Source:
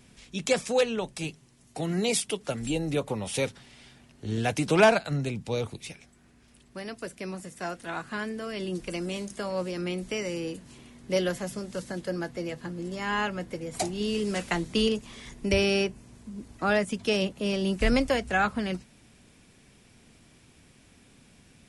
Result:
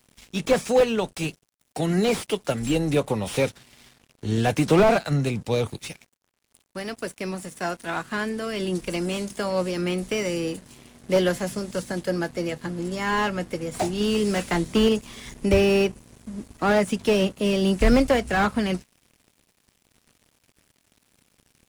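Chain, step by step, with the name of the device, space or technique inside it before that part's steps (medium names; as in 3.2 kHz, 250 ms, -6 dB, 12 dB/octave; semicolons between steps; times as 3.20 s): treble shelf 8.7 kHz +6 dB; early transistor amplifier (crossover distortion -52.5 dBFS; slew-rate limiter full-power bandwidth 62 Hz); trim +6.5 dB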